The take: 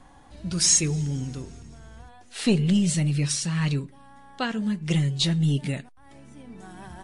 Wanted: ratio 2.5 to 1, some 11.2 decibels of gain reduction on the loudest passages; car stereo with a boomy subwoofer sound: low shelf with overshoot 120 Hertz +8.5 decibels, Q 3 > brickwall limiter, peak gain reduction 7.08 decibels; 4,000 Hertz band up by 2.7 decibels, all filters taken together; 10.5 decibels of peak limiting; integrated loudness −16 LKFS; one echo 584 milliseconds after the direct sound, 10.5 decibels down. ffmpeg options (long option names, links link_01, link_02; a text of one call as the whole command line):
ffmpeg -i in.wav -af "equalizer=frequency=4000:width_type=o:gain=3.5,acompressor=threshold=-33dB:ratio=2.5,alimiter=level_in=4.5dB:limit=-24dB:level=0:latency=1,volume=-4.5dB,lowshelf=frequency=120:width_type=q:width=3:gain=8.5,aecho=1:1:584:0.299,volume=24dB,alimiter=limit=-6.5dB:level=0:latency=1" out.wav